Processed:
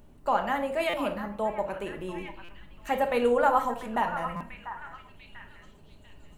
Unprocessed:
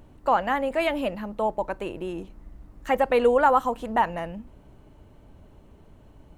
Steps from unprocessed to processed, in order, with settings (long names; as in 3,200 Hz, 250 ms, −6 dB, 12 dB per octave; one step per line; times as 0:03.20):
high-shelf EQ 6,000 Hz +7 dB
on a send: echo through a band-pass that steps 692 ms, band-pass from 1,300 Hz, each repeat 0.7 octaves, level −7.5 dB
on the sum: rectangular room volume 670 cubic metres, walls furnished, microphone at 1.3 metres
buffer that repeats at 0:00.89/0:02.44/0:04.36, samples 256, times 7
level −5.5 dB